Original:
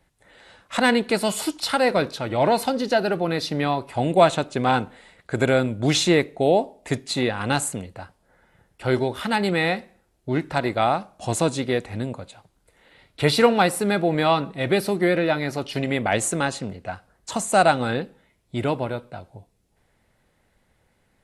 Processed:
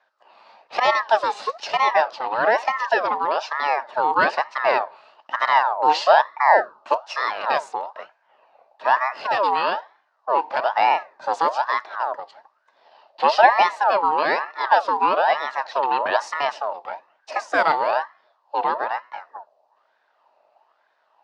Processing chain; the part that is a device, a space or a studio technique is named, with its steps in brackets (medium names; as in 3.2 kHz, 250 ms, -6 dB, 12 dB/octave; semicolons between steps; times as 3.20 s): voice changer toy (ring modulator with a swept carrier 1.1 kHz, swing 45%, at 1.1 Hz; cabinet simulation 590–4400 Hz, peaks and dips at 620 Hz +9 dB, 890 Hz +7 dB, 1.4 kHz -6 dB, 2.2 kHz -9 dB, 3.3 kHz -9 dB); trim +4.5 dB